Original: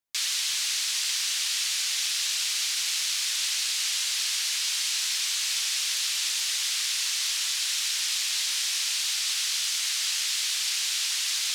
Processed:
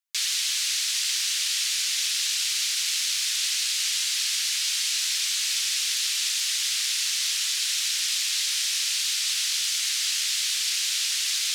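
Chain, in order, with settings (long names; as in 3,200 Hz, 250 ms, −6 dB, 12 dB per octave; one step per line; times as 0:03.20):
high-pass filter 1,400 Hz 12 dB per octave
in parallel at −11.5 dB: dead-zone distortion −44.5 dBFS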